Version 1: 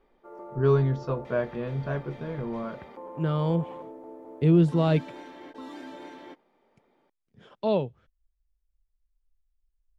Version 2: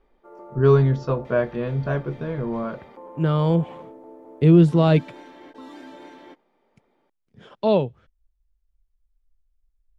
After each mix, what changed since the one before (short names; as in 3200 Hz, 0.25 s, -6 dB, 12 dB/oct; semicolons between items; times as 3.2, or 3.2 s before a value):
speech +6.0 dB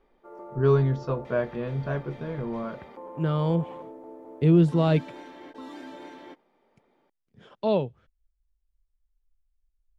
speech -5.0 dB